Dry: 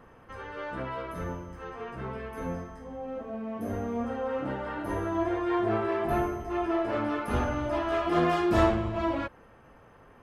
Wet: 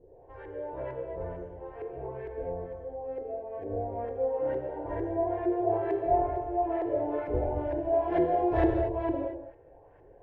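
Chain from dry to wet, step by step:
auto-filter low-pass saw up 2.2 Hz 340–1,800 Hz
phaser with its sweep stopped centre 520 Hz, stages 4
reverb whose tail is shaped and stops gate 270 ms flat, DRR 4 dB
level −1.5 dB

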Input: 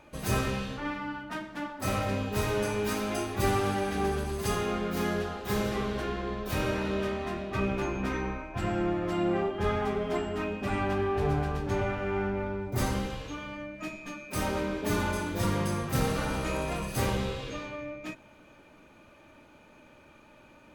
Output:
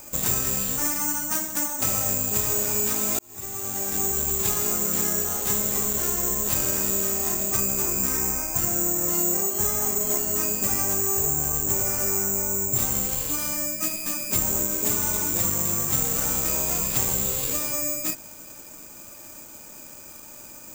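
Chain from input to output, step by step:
0:14.20–0:14.67: low-shelf EQ 300 Hz +7 dB
downward compressor, threshold −34 dBFS, peak gain reduction 12 dB
bad sample-rate conversion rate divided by 6×, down none, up zero stuff
0:03.19–0:04.13: fade in
level +5 dB

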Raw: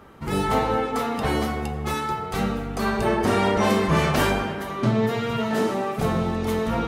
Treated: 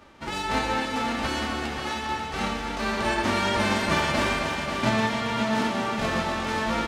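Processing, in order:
spectral envelope flattened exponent 0.3
head-to-tape spacing loss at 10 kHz 25 dB
comb filter 3.4 ms, depth 40%
echo machine with several playback heads 269 ms, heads first and second, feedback 49%, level −9 dB

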